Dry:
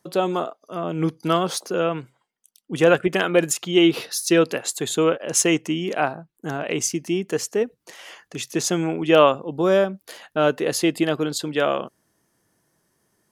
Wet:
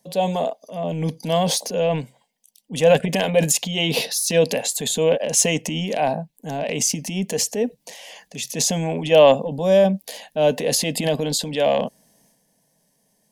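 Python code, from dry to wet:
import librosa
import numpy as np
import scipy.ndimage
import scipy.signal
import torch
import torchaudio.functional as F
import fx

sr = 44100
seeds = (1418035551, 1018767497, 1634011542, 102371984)

y = fx.transient(x, sr, attack_db=-4, sustain_db=7)
y = fx.fixed_phaser(y, sr, hz=350.0, stages=6)
y = F.gain(torch.from_numpy(y), 4.5).numpy()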